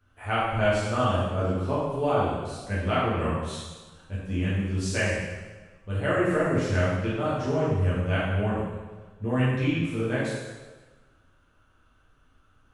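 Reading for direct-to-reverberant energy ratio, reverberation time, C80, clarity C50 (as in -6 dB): -9.5 dB, 1.3 s, 1.5 dB, -1.0 dB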